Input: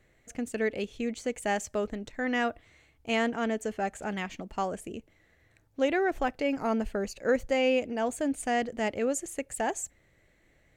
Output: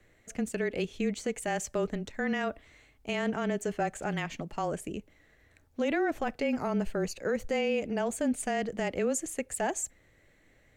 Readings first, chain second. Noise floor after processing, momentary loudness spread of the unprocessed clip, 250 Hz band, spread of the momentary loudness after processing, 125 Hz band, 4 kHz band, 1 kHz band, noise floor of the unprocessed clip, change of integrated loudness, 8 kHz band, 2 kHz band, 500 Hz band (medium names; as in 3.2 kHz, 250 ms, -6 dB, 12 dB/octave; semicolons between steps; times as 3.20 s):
-64 dBFS, 10 LU, -0.5 dB, 7 LU, +6.0 dB, -2.5 dB, -3.0 dB, -66 dBFS, -1.5 dB, +1.5 dB, -2.5 dB, -2.0 dB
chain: frequency shift -22 Hz; peak limiter -23 dBFS, peak gain reduction 9 dB; trim +2 dB